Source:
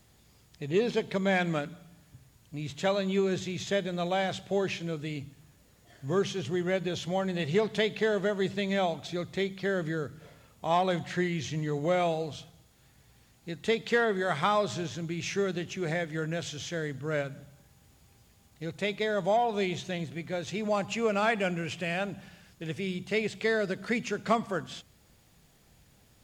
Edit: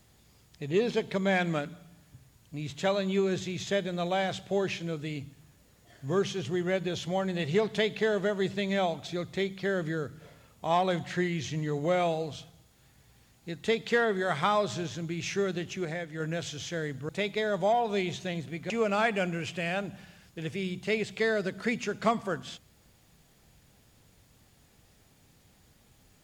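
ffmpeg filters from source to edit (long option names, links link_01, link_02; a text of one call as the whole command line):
ffmpeg -i in.wav -filter_complex "[0:a]asplit=5[link_01][link_02][link_03][link_04][link_05];[link_01]atrim=end=15.852[link_06];[link_02]atrim=start=15.848:end=16.202,asetpts=PTS-STARTPTS,volume=-4.5dB[link_07];[link_03]atrim=start=16.198:end=17.092[link_08];[link_04]atrim=start=18.728:end=20.342[link_09];[link_05]atrim=start=20.938[link_10];[link_06][link_07]acrossfade=duration=0.004:curve1=hsin:curve2=hsin[link_11];[link_11][link_08]acrossfade=duration=0.004:curve1=hsin:curve2=hsin[link_12];[link_12][link_09]acrossfade=duration=0.004:curve1=hsin:curve2=hsin[link_13];[link_13][link_10]acrossfade=duration=0.004:curve1=hsin:curve2=hsin" out.wav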